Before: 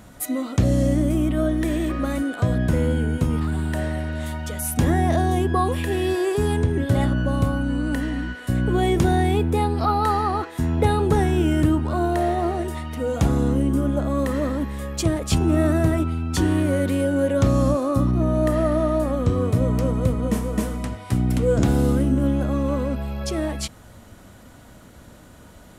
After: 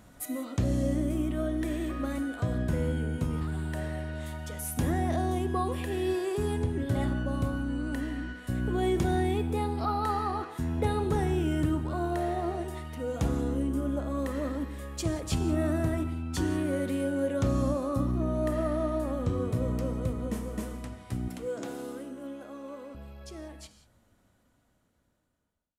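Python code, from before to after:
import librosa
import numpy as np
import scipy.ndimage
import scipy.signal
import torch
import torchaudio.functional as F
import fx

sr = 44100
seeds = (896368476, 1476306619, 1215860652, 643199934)

y = fx.fade_out_tail(x, sr, length_s=6.53)
y = fx.highpass(y, sr, hz=340.0, slope=12, at=(21.28, 22.95))
y = fx.rev_gated(y, sr, seeds[0], gate_ms=210, shape='flat', drr_db=10.0)
y = y * librosa.db_to_amplitude(-9.0)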